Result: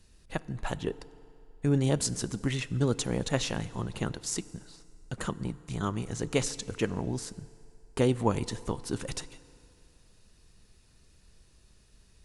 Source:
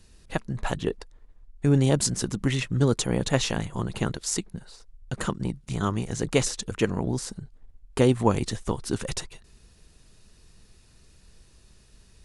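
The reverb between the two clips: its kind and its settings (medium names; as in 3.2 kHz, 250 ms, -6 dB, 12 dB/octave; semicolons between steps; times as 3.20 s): FDN reverb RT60 2.7 s, low-frequency decay 0.75×, high-frequency decay 0.75×, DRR 17 dB; trim -5 dB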